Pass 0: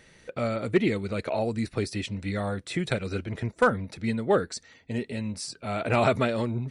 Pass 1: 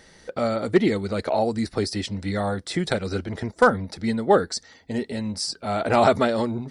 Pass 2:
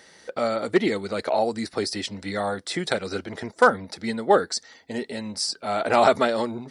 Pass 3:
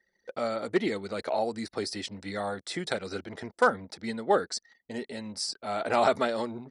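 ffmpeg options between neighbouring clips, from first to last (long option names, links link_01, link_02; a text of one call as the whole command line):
ffmpeg -i in.wav -af "equalizer=frequency=125:width_type=o:width=0.33:gain=-10,equalizer=frequency=800:width_type=o:width=0.33:gain=5,equalizer=frequency=2500:width_type=o:width=0.33:gain=-9,equalizer=frequency=5000:width_type=o:width=0.33:gain=7,volume=4.5dB" out.wav
ffmpeg -i in.wav -af "highpass=frequency=390:poles=1,volume=1.5dB" out.wav
ffmpeg -i in.wav -af "anlmdn=0.0398,volume=-6dB" out.wav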